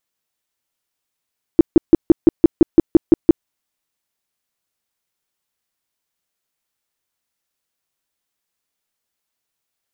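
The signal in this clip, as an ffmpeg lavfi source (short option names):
-f lavfi -i "aevalsrc='0.75*sin(2*PI*330*mod(t,0.17))*lt(mod(t,0.17),6/330)':d=1.87:s=44100"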